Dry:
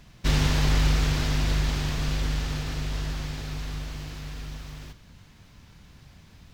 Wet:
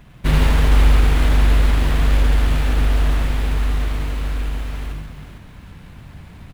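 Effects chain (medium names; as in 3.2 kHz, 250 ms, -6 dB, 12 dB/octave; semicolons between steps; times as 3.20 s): median filter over 9 samples; in parallel at +2.5 dB: gain riding within 4 dB; on the sum: multi-tap echo 78/136/455 ms -5.5/-6.5/-7.5 dB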